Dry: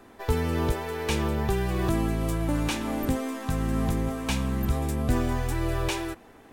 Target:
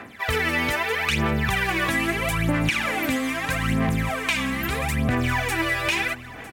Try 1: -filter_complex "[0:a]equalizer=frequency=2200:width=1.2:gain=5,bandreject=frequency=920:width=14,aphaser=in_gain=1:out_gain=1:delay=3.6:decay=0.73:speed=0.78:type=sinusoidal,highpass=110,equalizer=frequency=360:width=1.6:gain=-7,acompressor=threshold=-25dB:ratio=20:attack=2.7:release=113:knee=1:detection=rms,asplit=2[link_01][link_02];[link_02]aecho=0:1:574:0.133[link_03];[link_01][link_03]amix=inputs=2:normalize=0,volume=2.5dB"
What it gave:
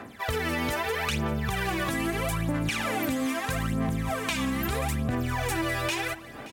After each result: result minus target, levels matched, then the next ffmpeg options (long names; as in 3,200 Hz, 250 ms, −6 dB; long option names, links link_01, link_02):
echo 379 ms early; downward compressor: peak gain reduction +5.5 dB; 2,000 Hz band −3.0 dB
-filter_complex "[0:a]equalizer=frequency=2200:width=1.2:gain=5,bandreject=frequency=920:width=14,aphaser=in_gain=1:out_gain=1:delay=3.6:decay=0.73:speed=0.78:type=sinusoidal,highpass=110,equalizer=frequency=360:width=1.6:gain=-7,acompressor=threshold=-25dB:ratio=20:attack=2.7:release=113:knee=1:detection=rms,asplit=2[link_01][link_02];[link_02]aecho=0:1:953:0.133[link_03];[link_01][link_03]amix=inputs=2:normalize=0,volume=2.5dB"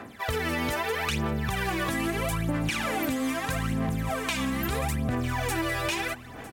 downward compressor: peak gain reduction +5.5 dB; 2,000 Hz band −3.0 dB
-filter_complex "[0:a]equalizer=frequency=2200:width=1.2:gain=5,bandreject=frequency=920:width=14,aphaser=in_gain=1:out_gain=1:delay=3.6:decay=0.73:speed=0.78:type=sinusoidal,highpass=110,equalizer=frequency=360:width=1.6:gain=-7,acompressor=threshold=-19dB:ratio=20:attack=2.7:release=113:knee=1:detection=rms,asplit=2[link_01][link_02];[link_02]aecho=0:1:953:0.133[link_03];[link_01][link_03]amix=inputs=2:normalize=0,volume=2.5dB"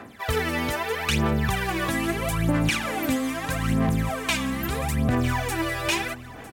2,000 Hz band −3.5 dB
-filter_complex "[0:a]equalizer=frequency=2200:width=1.2:gain=13,bandreject=frequency=920:width=14,aphaser=in_gain=1:out_gain=1:delay=3.6:decay=0.73:speed=0.78:type=sinusoidal,highpass=110,equalizer=frequency=360:width=1.6:gain=-7,acompressor=threshold=-19dB:ratio=20:attack=2.7:release=113:knee=1:detection=rms,asplit=2[link_01][link_02];[link_02]aecho=0:1:953:0.133[link_03];[link_01][link_03]amix=inputs=2:normalize=0,volume=2.5dB"